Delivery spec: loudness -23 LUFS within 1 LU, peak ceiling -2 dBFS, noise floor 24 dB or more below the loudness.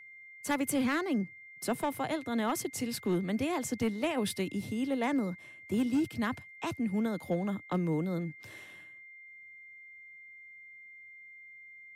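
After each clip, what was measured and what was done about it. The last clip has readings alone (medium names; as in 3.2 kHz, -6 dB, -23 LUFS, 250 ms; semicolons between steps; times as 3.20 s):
clipped samples 0.7%; clipping level -23.5 dBFS; steady tone 2.1 kHz; tone level -49 dBFS; loudness -33.0 LUFS; peak level -23.5 dBFS; loudness target -23.0 LUFS
-> clip repair -23.5 dBFS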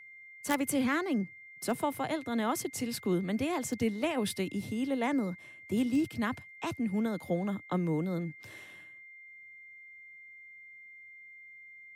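clipped samples 0.0%; steady tone 2.1 kHz; tone level -49 dBFS
-> band-stop 2.1 kHz, Q 30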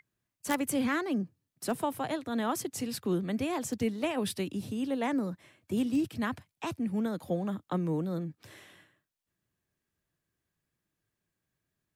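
steady tone not found; loudness -33.0 LUFS; peak level -14.5 dBFS; loudness target -23.0 LUFS
-> trim +10 dB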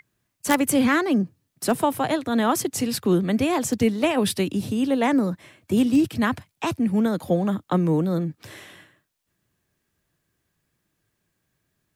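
loudness -23.0 LUFS; peak level -4.5 dBFS; noise floor -76 dBFS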